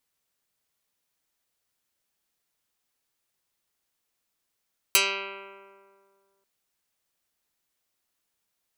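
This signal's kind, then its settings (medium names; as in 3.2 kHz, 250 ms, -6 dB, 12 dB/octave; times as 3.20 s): plucked string G3, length 1.49 s, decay 2.10 s, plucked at 0.11, dark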